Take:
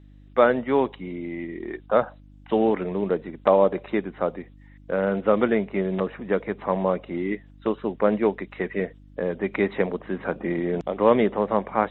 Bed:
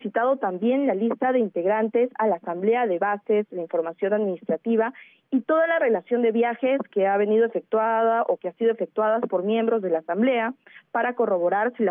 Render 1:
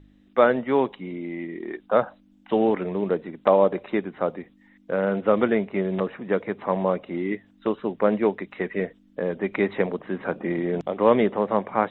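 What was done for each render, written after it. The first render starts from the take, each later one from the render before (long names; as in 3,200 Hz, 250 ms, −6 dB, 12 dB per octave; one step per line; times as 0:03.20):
hum removal 50 Hz, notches 3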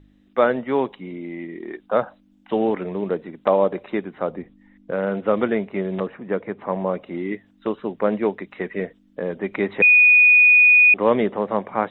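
0:04.30–0:04.91: spectral tilt −2 dB per octave
0:06.07–0:06.94: high-frequency loss of the air 240 metres
0:09.82–0:10.94: beep over 2,470 Hz −9 dBFS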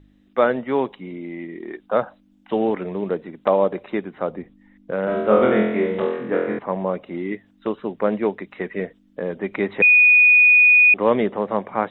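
0:05.05–0:06.59: flutter between parallel walls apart 4 metres, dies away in 0.82 s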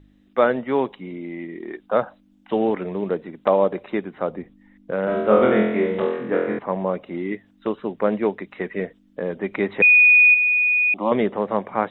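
0:10.34–0:11.12: phaser with its sweep stopped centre 450 Hz, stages 6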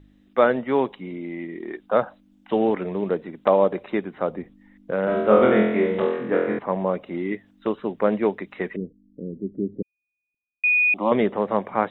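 0:08.76–0:10.64: inverse Chebyshev low-pass filter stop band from 900 Hz, stop band 50 dB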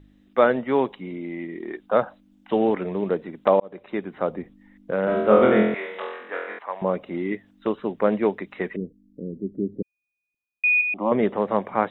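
0:03.60–0:04.14: fade in
0:05.74–0:06.82: high-pass filter 920 Hz
0:10.81–0:11.23: high-frequency loss of the air 470 metres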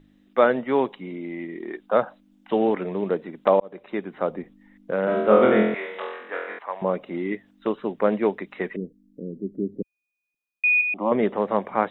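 parametric band 63 Hz −14 dB 1.1 octaves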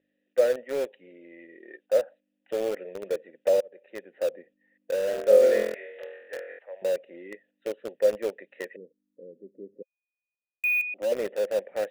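formant filter e
in parallel at −9 dB: bit reduction 5 bits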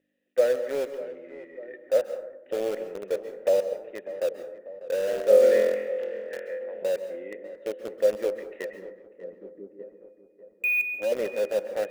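feedback echo with a low-pass in the loop 595 ms, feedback 63%, low-pass 1,300 Hz, level −14.5 dB
dense smooth reverb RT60 0.75 s, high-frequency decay 0.4×, pre-delay 120 ms, DRR 10 dB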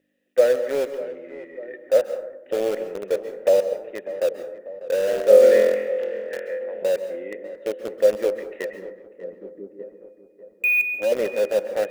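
level +5 dB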